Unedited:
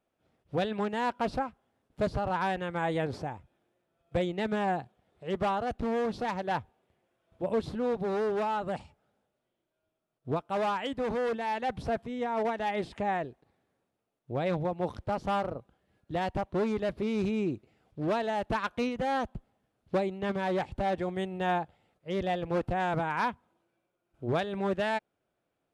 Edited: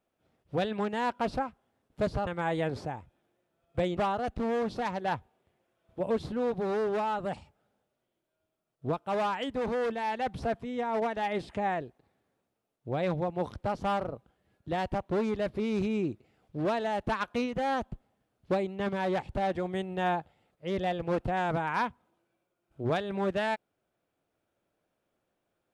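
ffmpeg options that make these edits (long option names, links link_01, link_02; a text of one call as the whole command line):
ffmpeg -i in.wav -filter_complex "[0:a]asplit=3[link_01][link_02][link_03];[link_01]atrim=end=2.272[link_04];[link_02]atrim=start=2.638:end=4.342[link_05];[link_03]atrim=start=5.398[link_06];[link_04][link_05]acrossfade=duration=0.004:curve1=hsin:curve2=hsin[link_07];[link_07][link_06]acrossfade=duration=0.004:curve1=hsin:curve2=hsin" out.wav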